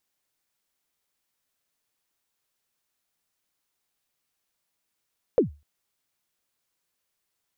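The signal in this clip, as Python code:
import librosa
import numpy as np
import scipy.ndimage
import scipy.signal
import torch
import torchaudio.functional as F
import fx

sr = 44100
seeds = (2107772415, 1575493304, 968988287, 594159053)

y = fx.drum_kick(sr, seeds[0], length_s=0.25, level_db=-11.5, start_hz=550.0, end_hz=73.0, sweep_ms=120.0, decay_s=0.28, click=False)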